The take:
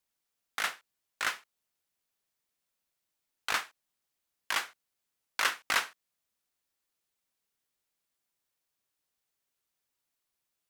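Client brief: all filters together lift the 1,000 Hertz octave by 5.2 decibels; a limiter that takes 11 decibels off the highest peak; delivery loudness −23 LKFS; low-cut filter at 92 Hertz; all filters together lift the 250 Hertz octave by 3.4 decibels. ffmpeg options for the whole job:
ffmpeg -i in.wav -af "highpass=92,equalizer=frequency=250:width_type=o:gain=4,equalizer=frequency=1000:width_type=o:gain=6.5,volume=13.5dB,alimiter=limit=-7dB:level=0:latency=1" out.wav

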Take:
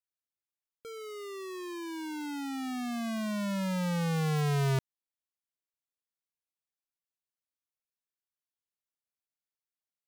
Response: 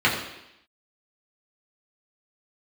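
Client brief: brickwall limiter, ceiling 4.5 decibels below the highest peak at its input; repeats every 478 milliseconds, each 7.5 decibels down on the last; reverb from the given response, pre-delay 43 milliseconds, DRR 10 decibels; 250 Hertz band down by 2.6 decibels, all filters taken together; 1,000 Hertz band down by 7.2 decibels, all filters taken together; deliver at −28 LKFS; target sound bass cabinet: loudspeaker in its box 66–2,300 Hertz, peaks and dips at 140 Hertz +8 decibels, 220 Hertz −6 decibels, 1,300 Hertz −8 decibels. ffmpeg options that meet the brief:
-filter_complex "[0:a]equalizer=frequency=250:width_type=o:gain=-7.5,equalizer=frequency=1000:width_type=o:gain=-7,alimiter=level_in=6dB:limit=-24dB:level=0:latency=1,volume=-6dB,aecho=1:1:478|956|1434|1912|2390:0.422|0.177|0.0744|0.0312|0.0131,asplit=2[link_01][link_02];[1:a]atrim=start_sample=2205,adelay=43[link_03];[link_02][link_03]afir=irnorm=-1:irlink=0,volume=-28.5dB[link_04];[link_01][link_04]amix=inputs=2:normalize=0,highpass=frequency=66:width=0.5412,highpass=frequency=66:width=1.3066,equalizer=frequency=140:width_type=q:width=4:gain=8,equalizer=frequency=220:width_type=q:width=4:gain=-6,equalizer=frequency=1300:width_type=q:width=4:gain=-8,lowpass=frequency=2300:width=0.5412,lowpass=frequency=2300:width=1.3066,volume=7dB"

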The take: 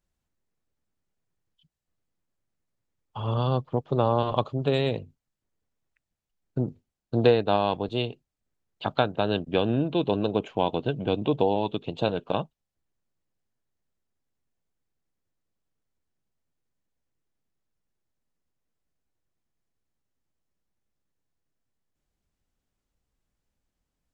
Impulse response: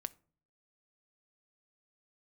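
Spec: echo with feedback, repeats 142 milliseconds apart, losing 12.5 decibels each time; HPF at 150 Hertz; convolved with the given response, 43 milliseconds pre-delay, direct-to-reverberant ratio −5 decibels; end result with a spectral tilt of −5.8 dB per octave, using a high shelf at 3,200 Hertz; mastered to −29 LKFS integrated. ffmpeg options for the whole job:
-filter_complex "[0:a]highpass=150,highshelf=frequency=3200:gain=-9,aecho=1:1:142|284|426:0.237|0.0569|0.0137,asplit=2[link_01][link_02];[1:a]atrim=start_sample=2205,adelay=43[link_03];[link_02][link_03]afir=irnorm=-1:irlink=0,volume=7.5dB[link_04];[link_01][link_04]amix=inputs=2:normalize=0,volume=-7.5dB"

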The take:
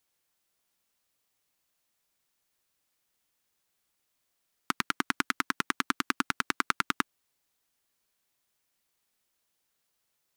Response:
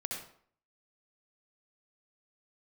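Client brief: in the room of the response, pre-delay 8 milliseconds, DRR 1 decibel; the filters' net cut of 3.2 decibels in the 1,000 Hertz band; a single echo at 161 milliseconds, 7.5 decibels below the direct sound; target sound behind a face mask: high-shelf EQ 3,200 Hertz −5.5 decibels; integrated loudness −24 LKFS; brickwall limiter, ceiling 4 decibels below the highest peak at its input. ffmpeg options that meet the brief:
-filter_complex "[0:a]equalizer=frequency=1000:width_type=o:gain=-3.5,alimiter=limit=-8.5dB:level=0:latency=1,aecho=1:1:161:0.422,asplit=2[link_01][link_02];[1:a]atrim=start_sample=2205,adelay=8[link_03];[link_02][link_03]afir=irnorm=-1:irlink=0,volume=-2.5dB[link_04];[link_01][link_04]amix=inputs=2:normalize=0,highshelf=frequency=3200:gain=-5.5,volume=9.5dB"

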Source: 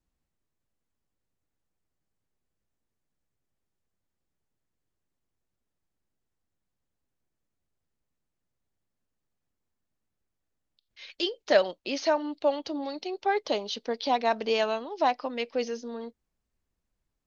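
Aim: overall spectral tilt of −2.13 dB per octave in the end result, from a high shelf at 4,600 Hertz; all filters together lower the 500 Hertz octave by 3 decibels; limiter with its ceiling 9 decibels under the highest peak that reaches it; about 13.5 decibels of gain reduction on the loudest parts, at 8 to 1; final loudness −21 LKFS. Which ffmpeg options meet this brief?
ffmpeg -i in.wav -af "equalizer=frequency=500:width_type=o:gain=-4,highshelf=frequency=4600:gain=7,acompressor=threshold=-32dB:ratio=8,volume=18.5dB,alimiter=limit=-9.5dB:level=0:latency=1" out.wav

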